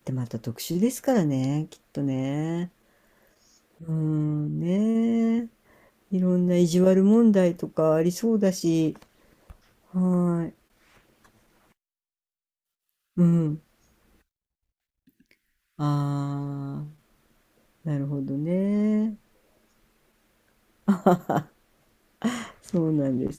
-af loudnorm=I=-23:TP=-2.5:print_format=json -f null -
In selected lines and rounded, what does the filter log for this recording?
"input_i" : "-25.0",
"input_tp" : "-6.0",
"input_lra" : "9.4",
"input_thresh" : "-36.8",